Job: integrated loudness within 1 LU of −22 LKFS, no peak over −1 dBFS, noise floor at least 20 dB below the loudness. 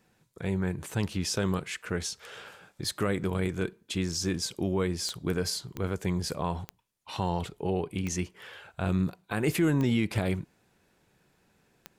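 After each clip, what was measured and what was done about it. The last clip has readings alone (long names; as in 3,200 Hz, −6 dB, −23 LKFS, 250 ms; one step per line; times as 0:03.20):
number of clicks 6; integrated loudness −31.0 LKFS; sample peak −14.5 dBFS; target loudness −22.0 LKFS
→ click removal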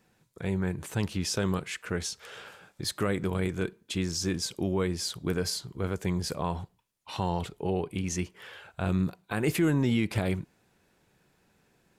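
number of clicks 0; integrated loudness −31.0 LKFS; sample peak −14.5 dBFS; target loudness −22.0 LKFS
→ level +9 dB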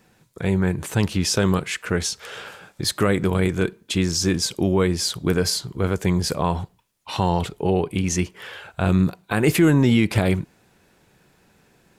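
integrated loudness −22.0 LKFS; sample peak −5.5 dBFS; background noise floor −60 dBFS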